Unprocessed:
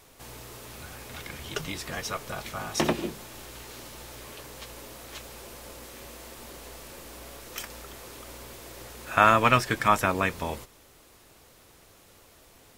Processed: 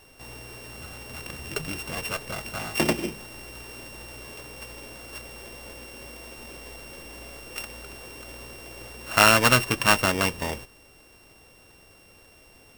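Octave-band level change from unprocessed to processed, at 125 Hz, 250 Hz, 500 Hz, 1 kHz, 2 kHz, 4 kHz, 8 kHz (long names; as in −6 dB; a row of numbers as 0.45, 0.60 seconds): +2.5, +2.0, +1.5, −1.5, +4.5, +8.0, +7.0 decibels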